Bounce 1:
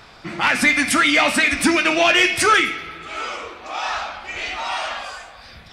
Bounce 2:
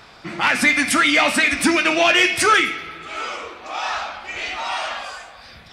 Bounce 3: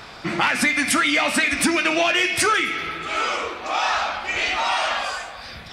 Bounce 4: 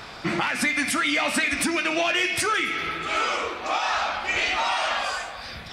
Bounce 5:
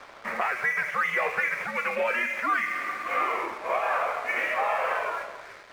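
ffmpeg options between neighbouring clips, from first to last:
ffmpeg -i in.wav -af "lowshelf=frequency=69:gain=-7" out.wav
ffmpeg -i in.wav -af "acompressor=threshold=-23dB:ratio=5,volume=5.5dB" out.wav
ffmpeg -i in.wav -af "alimiter=limit=-14dB:level=0:latency=1:release=462" out.wav
ffmpeg -i in.wav -af "highpass=frequency=520:width_type=q:width=0.5412,highpass=frequency=520:width_type=q:width=1.307,lowpass=frequency=2400:width_type=q:width=0.5176,lowpass=frequency=2400:width_type=q:width=0.7071,lowpass=frequency=2400:width_type=q:width=1.932,afreqshift=-120,aeval=exprs='sgn(val(0))*max(abs(val(0))-0.00501,0)':channel_layout=same" out.wav

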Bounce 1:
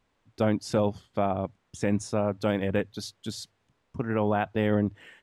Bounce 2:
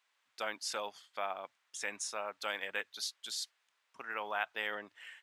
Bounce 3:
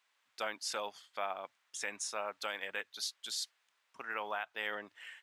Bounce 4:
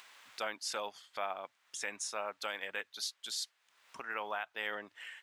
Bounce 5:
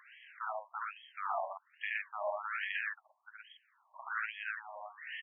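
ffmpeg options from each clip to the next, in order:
ffmpeg -i in.wav -af "highpass=1400,volume=1dB" out.wav
ffmpeg -i in.wav -af "alimiter=level_in=1dB:limit=-24dB:level=0:latency=1:release=339,volume=-1dB,volume=1dB" out.wav
ffmpeg -i in.wav -af "acompressor=mode=upward:threshold=-42dB:ratio=2.5" out.wav
ffmpeg -i in.wav -af "aecho=1:1:72.89|119.5:1|0.891,afftfilt=real='re*between(b*sr/1024,780*pow(2400/780,0.5+0.5*sin(2*PI*1.2*pts/sr))/1.41,780*pow(2400/780,0.5+0.5*sin(2*PI*1.2*pts/sr))*1.41)':imag='im*between(b*sr/1024,780*pow(2400/780,0.5+0.5*sin(2*PI*1.2*pts/sr))/1.41,780*pow(2400/780,0.5+0.5*sin(2*PI*1.2*pts/sr))*1.41)':win_size=1024:overlap=0.75,volume=1dB" out.wav

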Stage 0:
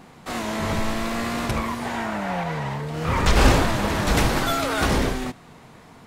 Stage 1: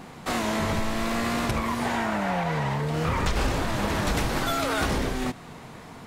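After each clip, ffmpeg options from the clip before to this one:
ffmpeg -i in.wav -af "acompressor=threshold=-27dB:ratio=5,volume=4dB" out.wav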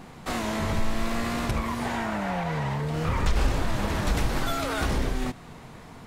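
ffmpeg -i in.wav -af "lowshelf=frequency=77:gain=9.5,volume=-3dB" out.wav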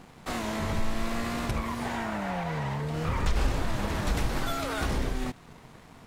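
ffmpeg -i in.wav -af "aeval=exprs='sgn(val(0))*max(abs(val(0))-0.00266,0)':channel_layout=same,volume=-2.5dB" out.wav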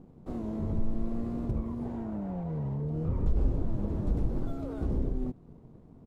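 ffmpeg -i in.wav -af "firequalizer=gain_entry='entry(350,0);entry(770,-13);entry(1800,-27)':delay=0.05:min_phase=1" out.wav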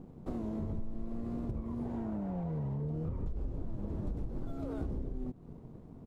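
ffmpeg -i in.wav -af "acompressor=threshold=-36dB:ratio=6,volume=2.5dB" out.wav

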